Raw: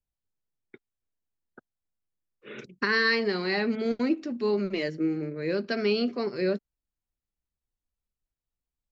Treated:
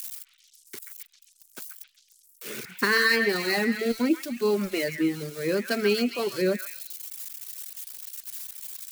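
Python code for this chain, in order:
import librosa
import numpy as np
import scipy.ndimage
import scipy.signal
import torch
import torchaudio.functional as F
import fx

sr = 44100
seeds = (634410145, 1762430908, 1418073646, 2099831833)

y = x + 0.5 * 10.0 ** (-28.5 / 20.0) * np.diff(np.sign(x), prepend=np.sign(x[:1]))
y = fx.dereverb_blind(y, sr, rt60_s=1.1)
y = fx.echo_stepped(y, sr, ms=134, hz=1700.0, octaves=0.7, feedback_pct=70, wet_db=-4)
y = y * 10.0 ** (3.0 / 20.0)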